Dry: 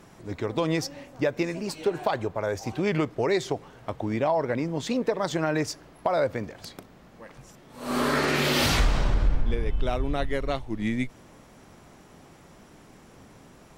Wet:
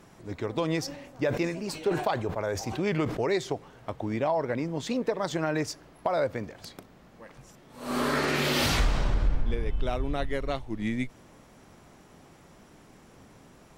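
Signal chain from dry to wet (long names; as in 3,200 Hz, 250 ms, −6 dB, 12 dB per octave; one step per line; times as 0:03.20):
0:00.82–0:03.21: level that may fall only so fast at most 76 dB per second
level −2.5 dB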